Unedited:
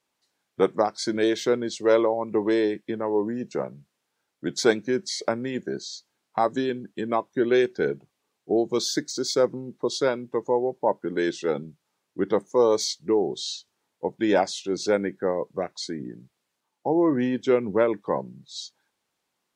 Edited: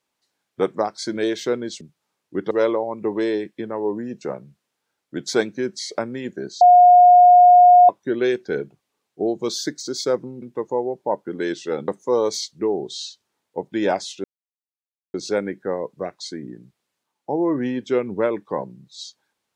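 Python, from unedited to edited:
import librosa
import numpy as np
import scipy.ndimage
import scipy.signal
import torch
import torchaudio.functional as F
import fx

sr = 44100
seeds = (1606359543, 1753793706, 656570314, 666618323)

y = fx.edit(x, sr, fx.bleep(start_s=5.91, length_s=1.28, hz=716.0, db=-6.5),
    fx.cut(start_s=9.72, length_s=0.47),
    fx.move(start_s=11.65, length_s=0.7, to_s=1.81),
    fx.insert_silence(at_s=14.71, length_s=0.9), tone=tone)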